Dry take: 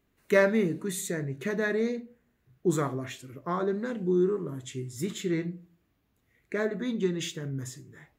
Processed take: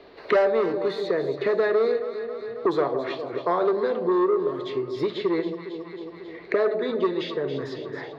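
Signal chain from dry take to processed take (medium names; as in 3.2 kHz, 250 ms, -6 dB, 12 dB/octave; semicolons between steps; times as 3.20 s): FFT filter 210 Hz 0 dB, 420 Hz +11 dB, 1.4 kHz -5 dB, 3 kHz +1 dB, 4.4 kHz +13 dB, 7.5 kHz -24 dB; saturation -14.5 dBFS, distortion -13 dB; three-band isolator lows -17 dB, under 540 Hz, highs -13 dB, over 2.1 kHz; on a send: echo whose repeats swap between lows and highs 136 ms, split 860 Hz, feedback 63%, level -9.5 dB; on the sum: three bands compressed up and down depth 70%; trim +8.5 dB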